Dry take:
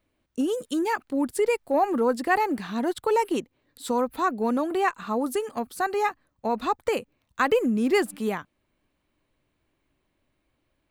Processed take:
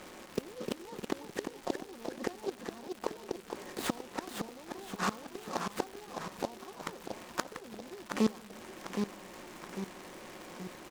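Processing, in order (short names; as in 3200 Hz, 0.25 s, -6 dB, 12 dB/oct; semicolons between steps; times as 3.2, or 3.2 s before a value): per-bin compression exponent 0.6; treble ducked by the level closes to 510 Hz, closed at -15.5 dBFS; low shelf 69 Hz -6 dB; comb 5.5 ms, depth 43%; flipped gate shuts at -17 dBFS, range -27 dB; crackle 360/s -36 dBFS; Bessel low-pass 6800 Hz; on a send at -22 dB: reverb, pre-delay 57 ms; on the sum: echoes that change speed 0.281 s, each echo -1 st, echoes 3, each echo -6 dB; noise-modulated delay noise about 4100 Hz, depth 0.044 ms; gain -1 dB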